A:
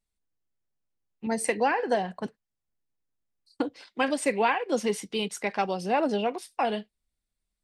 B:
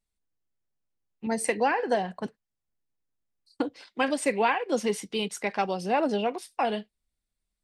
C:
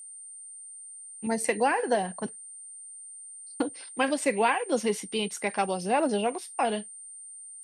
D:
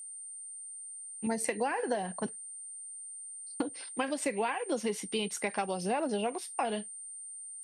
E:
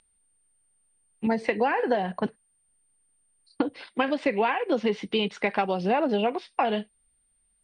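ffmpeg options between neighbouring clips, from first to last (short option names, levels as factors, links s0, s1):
-af anull
-af "aeval=exprs='val(0)+0.00794*sin(2*PI*8900*n/s)':c=same"
-af "acompressor=threshold=0.0398:ratio=6"
-af "lowpass=f=3900:w=0.5412,lowpass=f=3900:w=1.3066,volume=2.37"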